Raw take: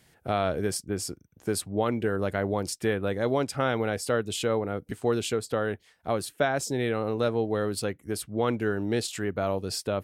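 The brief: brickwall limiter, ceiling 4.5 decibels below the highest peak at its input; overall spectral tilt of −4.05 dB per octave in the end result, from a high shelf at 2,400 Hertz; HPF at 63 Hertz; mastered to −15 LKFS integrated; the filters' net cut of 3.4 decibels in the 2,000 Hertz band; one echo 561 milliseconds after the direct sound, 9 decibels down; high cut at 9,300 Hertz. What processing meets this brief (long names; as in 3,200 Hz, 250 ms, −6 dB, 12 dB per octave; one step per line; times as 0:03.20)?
high-pass filter 63 Hz
low-pass filter 9,300 Hz
parametric band 2,000 Hz −8.5 dB
high-shelf EQ 2,400 Hz +7.5 dB
brickwall limiter −17.5 dBFS
single-tap delay 561 ms −9 dB
level +14.5 dB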